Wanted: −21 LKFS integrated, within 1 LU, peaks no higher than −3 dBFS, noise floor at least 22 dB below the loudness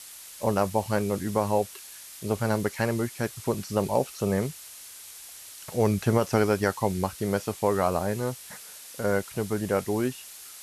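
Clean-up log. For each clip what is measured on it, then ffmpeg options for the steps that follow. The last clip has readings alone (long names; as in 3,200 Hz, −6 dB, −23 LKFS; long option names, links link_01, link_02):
background noise floor −45 dBFS; target noise floor −50 dBFS; integrated loudness −27.5 LKFS; sample peak −10.5 dBFS; target loudness −21.0 LKFS
→ -af "afftdn=noise_reduction=6:noise_floor=-45"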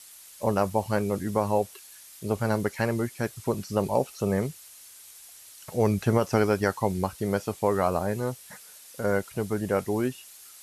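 background noise floor −49 dBFS; target noise floor −50 dBFS
→ -af "afftdn=noise_reduction=6:noise_floor=-49"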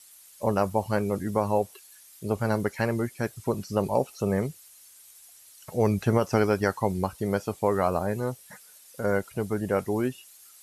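background noise floor −53 dBFS; integrated loudness −27.5 LKFS; sample peak −10.5 dBFS; target loudness −21.0 LKFS
→ -af "volume=6.5dB"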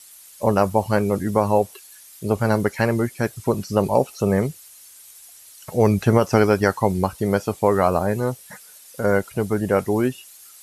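integrated loudness −21.0 LKFS; sample peak −4.0 dBFS; background noise floor −46 dBFS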